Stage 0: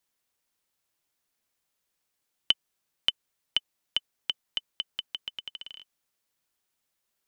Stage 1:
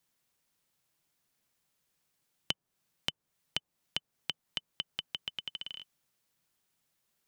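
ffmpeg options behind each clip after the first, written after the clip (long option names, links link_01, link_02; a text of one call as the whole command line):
ffmpeg -i in.wav -filter_complex "[0:a]equalizer=frequency=150:width_type=o:width=1:gain=8.5,acrossover=split=1300[link_01][link_02];[link_02]acompressor=threshold=-35dB:ratio=6[link_03];[link_01][link_03]amix=inputs=2:normalize=0,volume=1.5dB" out.wav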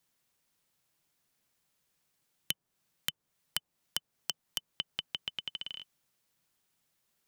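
ffmpeg -i in.wav -af "aeval=exprs='(mod(5.62*val(0)+1,2)-1)/5.62':channel_layout=same,volume=1dB" out.wav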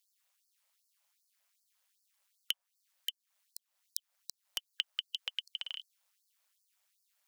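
ffmpeg -i in.wav -af "tremolo=f=200:d=0.824,afftfilt=real='re*gte(b*sr/1024,490*pow(4300/490,0.5+0.5*sin(2*PI*2.6*pts/sr)))':imag='im*gte(b*sr/1024,490*pow(4300/490,0.5+0.5*sin(2*PI*2.6*pts/sr)))':win_size=1024:overlap=0.75,volume=4dB" out.wav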